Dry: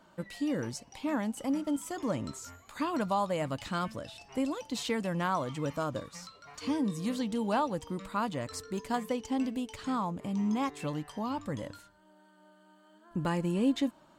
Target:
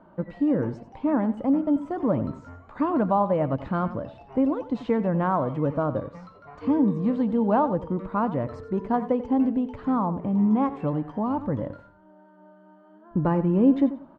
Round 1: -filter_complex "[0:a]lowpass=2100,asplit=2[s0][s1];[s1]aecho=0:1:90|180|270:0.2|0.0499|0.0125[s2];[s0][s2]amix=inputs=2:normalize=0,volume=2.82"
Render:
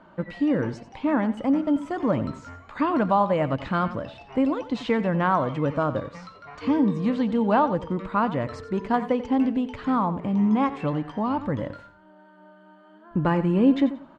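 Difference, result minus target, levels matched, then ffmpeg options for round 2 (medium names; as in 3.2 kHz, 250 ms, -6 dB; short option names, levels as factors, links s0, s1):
2 kHz band +7.5 dB
-filter_complex "[0:a]lowpass=1000,asplit=2[s0][s1];[s1]aecho=0:1:90|180|270:0.2|0.0499|0.0125[s2];[s0][s2]amix=inputs=2:normalize=0,volume=2.82"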